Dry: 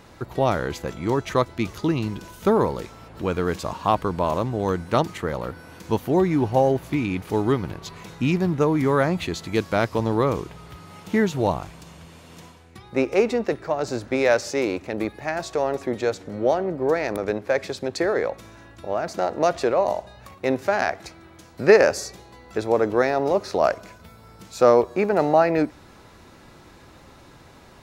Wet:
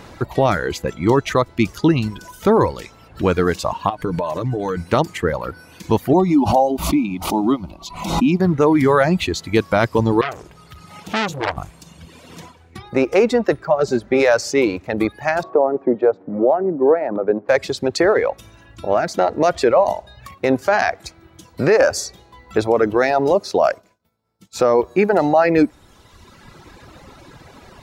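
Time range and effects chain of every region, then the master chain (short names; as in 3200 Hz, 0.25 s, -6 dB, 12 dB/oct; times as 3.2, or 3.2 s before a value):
3.89–4.77 comb 6.7 ms, depth 41% + compressor 12:1, threshold -24 dBFS
6.13–8.4 bell 8600 Hz -3.5 dB 2.2 oct + fixed phaser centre 450 Hz, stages 6 + backwards sustainer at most 61 dB/s
10.21–11.57 notches 60/120/180/240/300/360 Hz + core saturation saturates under 2800 Hz
13.65–14.2 HPF 43 Hz + high shelf 2300 Hz -6.5 dB + comb 5.1 ms, depth 51%
15.43–17.49 Butterworth band-pass 440 Hz, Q 0.52 + three-band squash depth 40%
23.35–24.59 HPF 140 Hz 6 dB/oct + expander -37 dBFS + bell 1700 Hz -4.5 dB 1.6 oct
whole clip: reverb removal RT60 1.5 s; high shelf 8100 Hz -4 dB; limiter -14 dBFS; gain +9 dB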